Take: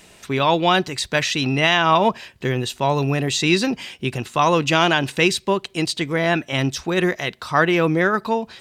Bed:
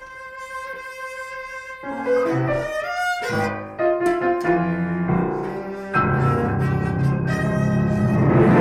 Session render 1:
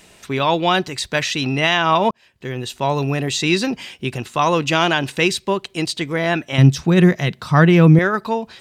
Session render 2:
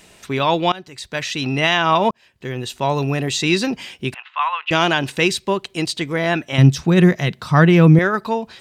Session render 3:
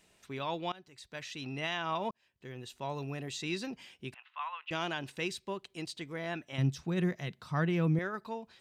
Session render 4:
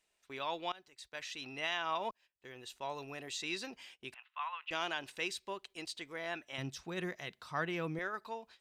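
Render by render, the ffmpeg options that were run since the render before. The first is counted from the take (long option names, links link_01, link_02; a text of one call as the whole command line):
ffmpeg -i in.wav -filter_complex "[0:a]asettb=1/sr,asplit=3[link_01][link_02][link_03];[link_01]atrim=end=6.584[link_04];[link_02]atrim=start=6.58:end=7.99,asetpts=PTS-STARTPTS,afade=type=in:duration=0.004:curve=qsin,afade=type=out:start_time=1.406:duration=0.004:curve=qsin,equalizer=frequency=150:width=0.99:gain=15[link_05];[link_03]atrim=start=7.986[link_06];[link_04][link_05]acrossfade=duration=0.004:curve1=hsin:curve2=qsin[link_07];[link_07][link_06]acrossfade=duration=0.004:curve1=qsin:curve2=hsin,asplit=2[link_08][link_09];[link_08]atrim=end=2.11,asetpts=PTS-STARTPTS,afade=type=out:start_time=2.106:duration=0.004:curve=hsin[link_10];[link_09]atrim=start=2.11,asetpts=PTS-STARTPTS,afade=type=in:duration=0.72[link_11];[link_10][link_11]concat=n=2:v=0:a=1" out.wav
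ffmpeg -i in.wav -filter_complex "[0:a]asettb=1/sr,asplit=3[link_01][link_02][link_03];[link_01]atrim=end=4.144[link_04];[link_02]atrim=start=4.14:end=4.71,asetpts=PTS-STARTPTS,afade=type=in:duration=0.004:curve=qsin,afade=type=out:start_time=0.566:duration=0.004:curve=qsin,asuperpass=centerf=1700:order=8:qfactor=0.74[link_05];[link_03]atrim=start=4.706[link_06];[link_04][link_05]acrossfade=duration=0.004:curve1=hsin:curve2=qsin[link_07];[link_07][link_06]acrossfade=duration=0.004:curve1=qsin:curve2=hsin,asplit=2[link_08][link_09];[link_08]atrim=end=0.72,asetpts=PTS-STARTPTS,afade=type=out:start_time=0.716:duration=0.004:curve=hsin:silence=0.0891251[link_10];[link_09]atrim=start=0.72,asetpts=PTS-STARTPTS,afade=type=in:duration=0.86:silence=0.0891251[link_11];[link_10][link_11]concat=n=2:v=0:a=1" out.wav
ffmpeg -i in.wav -af "volume=-18.5dB" out.wav
ffmpeg -i in.wav -af "agate=range=-12dB:threshold=-55dB:ratio=16:detection=peak,equalizer=frequency=140:width=0.58:gain=-15" out.wav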